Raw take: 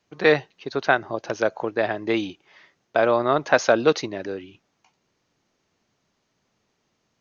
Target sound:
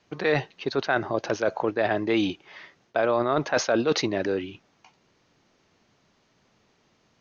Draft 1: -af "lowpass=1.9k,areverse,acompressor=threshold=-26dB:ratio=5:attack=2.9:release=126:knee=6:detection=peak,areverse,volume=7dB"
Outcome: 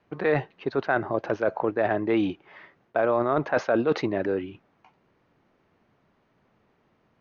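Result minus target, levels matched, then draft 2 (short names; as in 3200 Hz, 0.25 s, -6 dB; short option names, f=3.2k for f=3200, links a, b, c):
8000 Hz band -16.5 dB
-af "lowpass=5.9k,areverse,acompressor=threshold=-26dB:ratio=5:attack=2.9:release=126:knee=6:detection=peak,areverse,volume=7dB"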